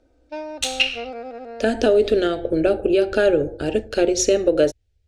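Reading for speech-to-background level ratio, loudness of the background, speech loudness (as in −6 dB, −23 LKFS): 14.5 dB, −34.5 LKFS, −20.0 LKFS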